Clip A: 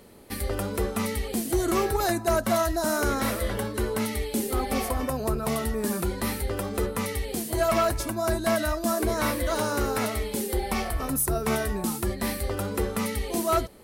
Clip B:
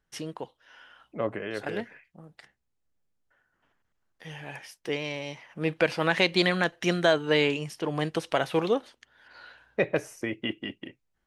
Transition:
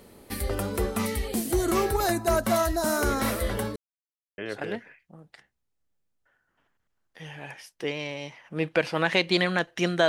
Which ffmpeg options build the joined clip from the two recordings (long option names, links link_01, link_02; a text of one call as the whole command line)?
ffmpeg -i cue0.wav -i cue1.wav -filter_complex "[0:a]apad=whole_dur=10.08,atrim=end=10.08,asplit=2[link_01][link_02];[link_01]atrim=end=3.76,asetpts=PTS-STARTPTS,afade=type=out:start_time=3.756:duration=0.004:curve=hsin[link_03];[link_02]atrim=start=3.76:end=4.38,asetpts=PTS-STARTPTS,volume=0[link_04];[1:a]atrim=start=1.43:end=7.13,asetpts=PTS-STARTPTS,afade=type=in:duration=0.004:curve=hsin[link_05];[link_03][link_04][link_05]concat=n=3:v=0:a=1" out.wav